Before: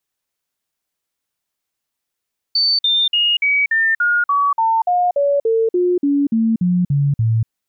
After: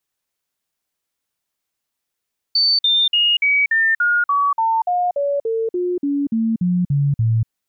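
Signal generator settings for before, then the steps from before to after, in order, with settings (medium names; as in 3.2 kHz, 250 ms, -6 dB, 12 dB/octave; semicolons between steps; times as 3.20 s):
stepped sine 4.54 kHz down, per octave 3, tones 17, 0.24 s, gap 0.05 s -12.5 dBFS
dynamic bell 400 Hz, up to -5 dB, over -29 dBFS, Q 0.72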